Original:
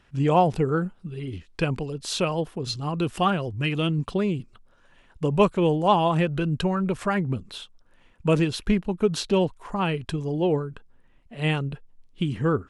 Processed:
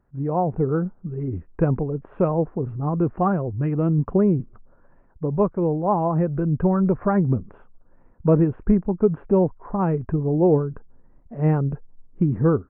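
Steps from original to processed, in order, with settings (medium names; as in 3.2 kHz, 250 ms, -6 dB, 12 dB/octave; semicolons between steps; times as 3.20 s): level rider gain up to 12 dB; Gaussian low-pass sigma 7.1 samples; trim -4 dB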